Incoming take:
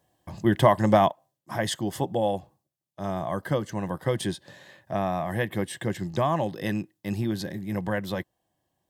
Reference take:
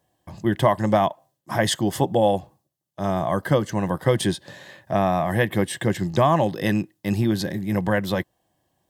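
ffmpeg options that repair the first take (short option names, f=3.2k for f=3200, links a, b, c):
-af "asetnsamples=n=441:p=0,asendcmd='1.11 volume volume 6.5dB',volume=0dB"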